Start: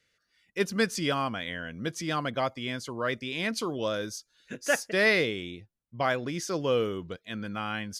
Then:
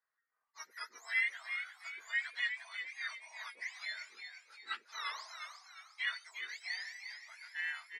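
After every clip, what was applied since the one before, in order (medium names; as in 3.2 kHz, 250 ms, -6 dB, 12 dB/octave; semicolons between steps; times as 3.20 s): spectrum inverted on a logarithmic axis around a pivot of 1.5 kHz; ladder band-pass 2.1 kHz, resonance 75%; frequency-shifting echo 355 ms, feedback 42%, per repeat +98 Hz, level -7.5 dB; trim +2.5 dB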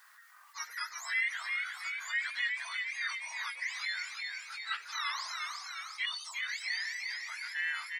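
time-frequency box 6.05–6.33 s, 1.3–2.6 kHz -22 dB; high-pass 930 Hz 24 dB/octave; level flattener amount 50%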